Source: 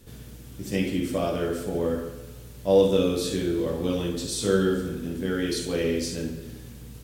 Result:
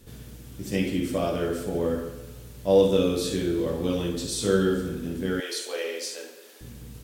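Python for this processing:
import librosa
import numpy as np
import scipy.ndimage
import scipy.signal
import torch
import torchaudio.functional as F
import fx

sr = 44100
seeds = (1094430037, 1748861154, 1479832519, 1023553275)

y = fx.highpass(x, sr, hz=490.0, slope=24, at=(5.4, 6.61))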